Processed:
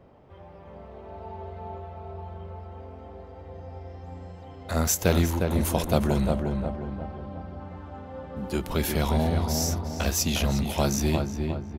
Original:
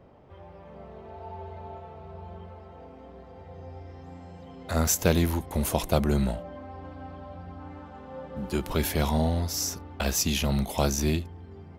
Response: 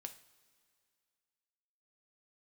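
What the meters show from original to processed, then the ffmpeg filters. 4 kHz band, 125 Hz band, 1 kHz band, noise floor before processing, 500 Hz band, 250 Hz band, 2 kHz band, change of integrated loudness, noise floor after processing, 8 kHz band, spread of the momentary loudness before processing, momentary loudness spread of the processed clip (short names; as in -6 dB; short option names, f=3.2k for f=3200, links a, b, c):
+0.5 dB, +2.0 dB, +1.5 dB, -48 dBFS, +1.5 dB, +1.5 dB, +1.0 dB, +0.5 dB, -46 dBFS, 0.0 dB, 20 LU, 19 LU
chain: -filter_complex "[0:a]asplit=2[a][b];[b]adelay=357,lowpass=f=1.8k:p=1,volume=-4dB,asplit=2[c][d];[d]adelay=357,lowpass=f=1.8k:p=1,volume=0.49,asplit=2[e][f];[f]adelay=357,lowpass=f=1.8k:p=1,volume=0.49,asplit=2[g][h];[h]adelay=357,lowpass=f=1.8k:p=1,volume=0.49,asplit=2[i][j];[j]adelay=357,lowpass=f=1.8k:p=1,volume=0.49,asplit=2[k][l];[l]adelay=357,lowpass=f=1.8k:p=1,volume=0.49[m];[a][c][e][g][i][k][m]amix=inputs=7:normalize=0"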